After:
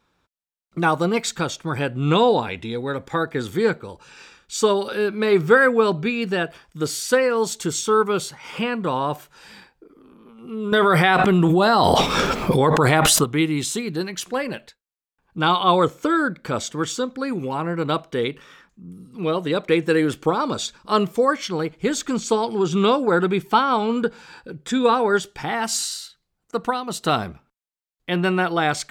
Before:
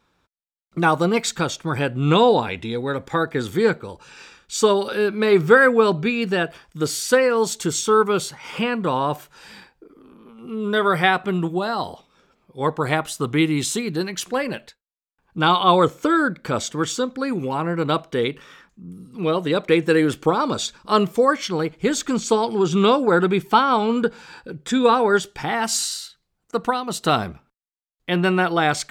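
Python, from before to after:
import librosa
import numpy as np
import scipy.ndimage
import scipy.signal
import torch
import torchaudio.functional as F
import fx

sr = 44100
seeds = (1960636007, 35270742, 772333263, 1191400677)

y = fx.env_flatten(x, sr, amount_pct=100, at=(10.72, 13.24))
y = F.gain(torch.from_numpy(y), -1.5).numpy()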